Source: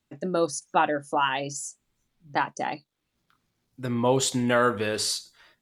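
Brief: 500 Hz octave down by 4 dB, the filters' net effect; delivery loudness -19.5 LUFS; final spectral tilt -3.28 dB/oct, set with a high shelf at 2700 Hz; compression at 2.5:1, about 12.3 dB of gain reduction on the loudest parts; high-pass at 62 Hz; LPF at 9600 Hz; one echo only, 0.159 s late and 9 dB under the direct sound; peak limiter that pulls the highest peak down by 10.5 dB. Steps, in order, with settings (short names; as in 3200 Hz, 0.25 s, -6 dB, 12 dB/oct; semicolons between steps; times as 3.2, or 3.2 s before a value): HPF 62 Hz; LPF 9600 Hz; bell 500 Hz -5 dB; high shelf 2700 Hz +5 dB; compressor 2.5:1, threshold -37 dBFS; limiter -30 dBFS; echo 0.159 s -9 dB; gain +21 dB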